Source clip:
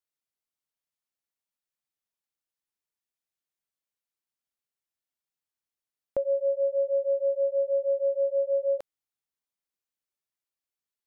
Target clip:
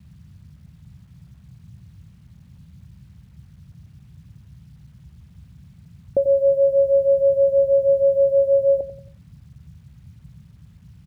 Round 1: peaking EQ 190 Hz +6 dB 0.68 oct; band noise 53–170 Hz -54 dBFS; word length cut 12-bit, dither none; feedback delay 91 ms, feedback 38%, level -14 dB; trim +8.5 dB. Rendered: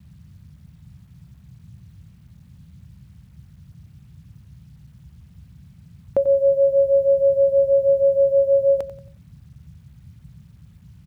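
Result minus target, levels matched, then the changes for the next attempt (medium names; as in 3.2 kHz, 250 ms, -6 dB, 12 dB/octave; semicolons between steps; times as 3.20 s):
1 kHz band +3.5 dB
add first: steep low-pass 740 Hz 48 dB/octave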